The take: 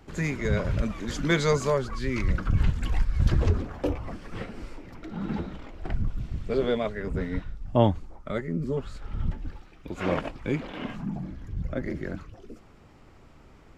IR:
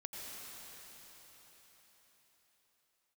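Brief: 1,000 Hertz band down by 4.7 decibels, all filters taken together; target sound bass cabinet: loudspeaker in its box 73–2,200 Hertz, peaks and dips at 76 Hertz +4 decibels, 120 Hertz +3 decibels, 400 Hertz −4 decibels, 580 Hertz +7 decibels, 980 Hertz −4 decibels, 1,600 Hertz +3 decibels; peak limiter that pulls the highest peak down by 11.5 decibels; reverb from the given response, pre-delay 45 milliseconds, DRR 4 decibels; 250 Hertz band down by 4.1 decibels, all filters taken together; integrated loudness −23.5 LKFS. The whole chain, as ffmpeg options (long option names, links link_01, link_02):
-filter_complex "[0:a]equalizer=frequency=250:width_type=o:gain=-5.5,equalizer=frequency=1000:width_type=o:gain=-5.5,alimiter=limit=-19.5dB:level=0:latency=1,asplit=2[link_01][link_02];[1:a]atrim=start_sample=2205,adelay=45[link_03];[link_02][link_03]afir=irnorm=-1:irlink=0,volume=-3dB[link_04];[link_01][link_04]amix=inputs=2:normalize=0,highpass=frequency=73:width=0.5412,highpass=frequency=73:width=1.3066,equalizer=frequency=76:width_type=q:width=4:gain=4,equalizer=frequency=120:width_type=q:width=4:gain=3,equalizer=frequency=400:width_type=q:width=4:gain=-4,equalizer=frequency=580:width_type=q:width=4:gain=7,equalizer=frequency=980:width_type=q:width=4:gain=-4,equalizer=frequency=1600:width_type=q:width=4:gain=3,lowpass=frequency=2200:width=0.5412,lowpass=frequency=2200:width=1.3066,volume=8.5dB"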